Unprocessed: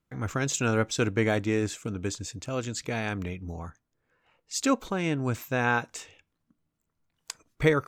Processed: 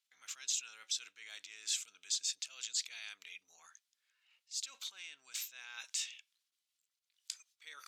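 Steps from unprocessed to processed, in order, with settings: transient shaper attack -9 dB, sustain +4 dB; reverse; compression 6:1, threshold -36 dBFS, peak gain reduction 15.5 dB; reverse; band-pass filter 3.6 kHz, Q 1.4; differentiator; trim +12 dB

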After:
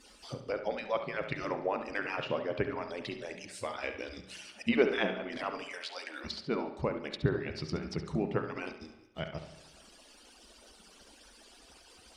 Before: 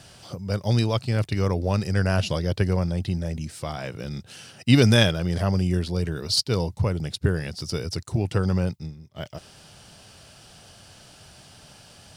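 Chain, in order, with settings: harmonic-percussive separation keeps percussive; 5.63–6.23 s: high-pass 690 Hz -> 330 Hz 24 dB/octave; low-pass that closes with the level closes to 1.5 kHz, closed at -27.5 dBFS; dynamic bell 2.3 kHz, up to +7 dB, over -57 dBFS, Q 2.7; on a send: flutter echo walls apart 11.9 m, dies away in 0.38 s; on the sum: spring tank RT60 1 s, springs 32/43 ms, chirp 30 ms, DRR 9 dB; trim -3 dB

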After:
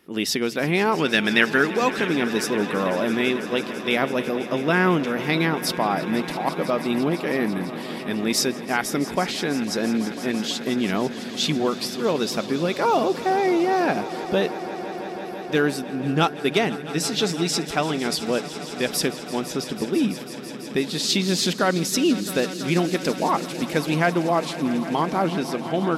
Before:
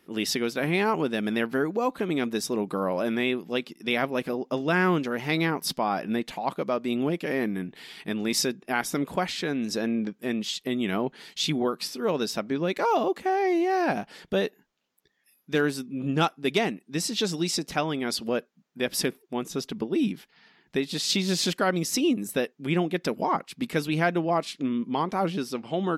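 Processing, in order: 0.98–2.08 s: high-order bell 3.3 kHz +10.5 dB 2.9 oct; echo with a slow build-up 166 ms, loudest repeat 5, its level -17.5 dB; trim +3.5 dB

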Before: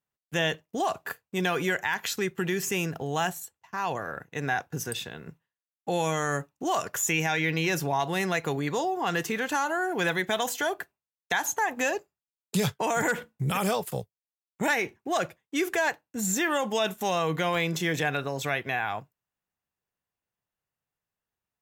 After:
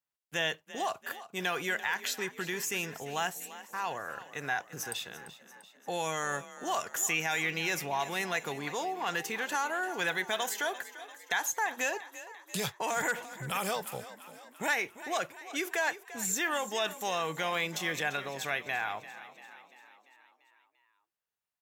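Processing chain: bass shelf 430 Hz -11.5 dB; frequency-shifting echo 343 ms, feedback 58%, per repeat +34 Hz, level -15 dB; trim -2.5 dB

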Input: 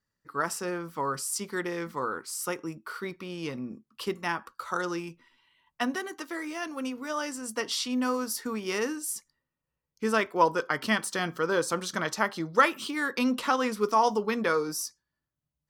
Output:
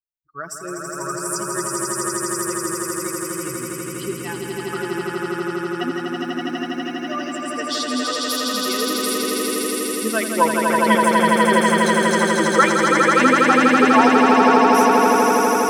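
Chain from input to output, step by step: expander on every frequency bin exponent 2; echo with a slow build-up 82 ms, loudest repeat 8, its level -3 dB; trim +7.5 dB

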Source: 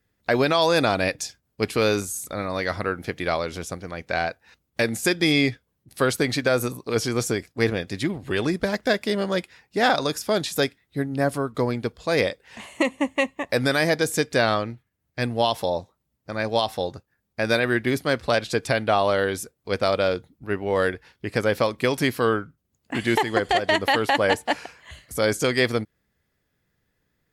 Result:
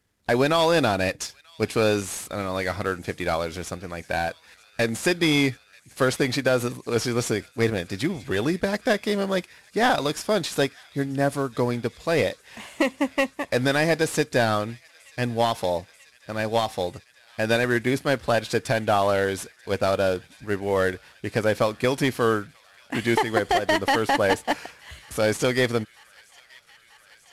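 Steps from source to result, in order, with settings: CVSD coder 64 kbps; feedback echo behind a high-pass 937 ms, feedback 82%, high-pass 1.9 kHz, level -23 dB

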